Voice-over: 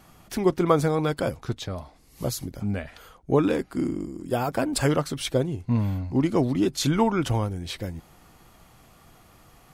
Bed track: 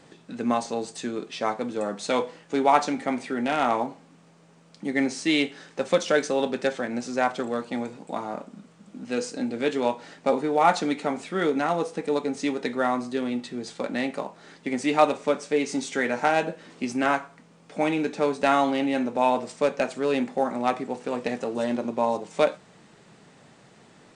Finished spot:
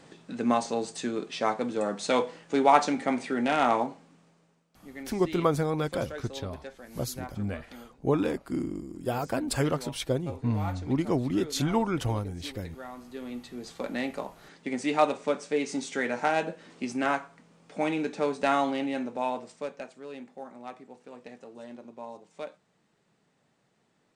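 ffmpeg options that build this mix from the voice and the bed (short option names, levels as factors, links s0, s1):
-filter_complex "[0:a]adelay=4750,volume=0.596[s0];[1:a]volume=4.73,afade=t=out:st=3.75:d=0.92:silence=0.133352,afade=t=in:st=12.95:d=0.93:silence=0.199526,afade=t=out:st=18.56:d=1.39:silence=0.211349[s1];[s0][s1]amix=inputs=2:normalize=0"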